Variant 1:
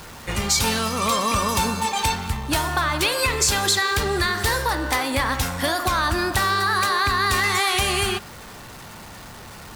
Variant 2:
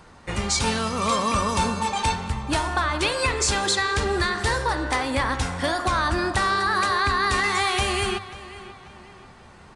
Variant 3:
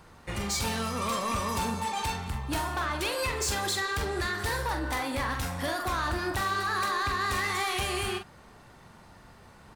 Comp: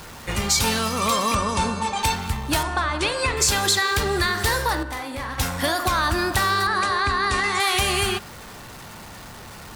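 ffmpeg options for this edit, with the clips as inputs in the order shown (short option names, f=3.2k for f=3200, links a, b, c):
-filter_complex "[1:a]asplit=3[a][b][c];[0:a]asplit=5[d][e][f][g][h];[d]atrim=end=1.352[i];[a]atrim=start=1.348:end=2.032[j];[e]atrim=start=2.028:end=2.632[k];[b]atrim=start=2.628:end=3.372[l];[f]atrim=start=3.368:end=4.832[m];[2:a]atrim=start=4.828:end=5.382[n];[g]atrim=start=5.378:end=6.672[o];[c]atrim=start=6.668:end=7.602[p];[h]atrim=start=7.598[q];[i][j]acrossfade=d=0.004:c1=hsin:c2=hsin[r];[r][k]acrossfade=d=0.004:c1=hsin:c2=hsin[s];[s][l]acrossfade=d=0.004:c1=hsin:c2=hsin[t];[t][m]acrossfade=d=0.004:c1=hsin:c2=hsin[u];[u][n]acrossfade=d=0.004:c1=hsin:c2=hsin[v];[v][o]acrossfade=d=0.004:c1=hsin:c2=hsin[w];[w][p]acrossfade=d=0.004:c1=hsin:c2=hsin[x];[x][q]acrossfade=d=0.004:c1=hsin:c2=hsin"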